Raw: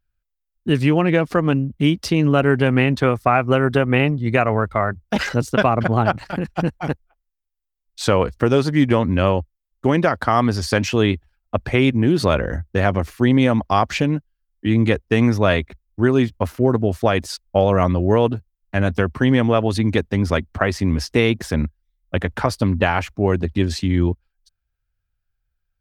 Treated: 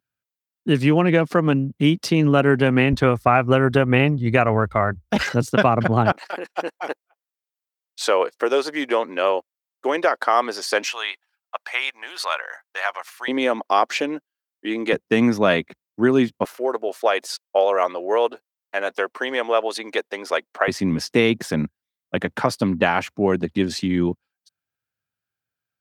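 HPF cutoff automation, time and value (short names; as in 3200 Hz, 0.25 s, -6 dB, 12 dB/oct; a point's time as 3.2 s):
HPF 24 dB/oct
130 Hz
from 2.93 s 43 Hz
from 5.23 s 99 Hz
from 6.12 s 390 Hz
from 10.86 s 840 Hz
from 13.28 s 330 Hz
from 14.93 s 160 Hz
from 16.45 s 440 Hz
from 20.68 s 140 Hz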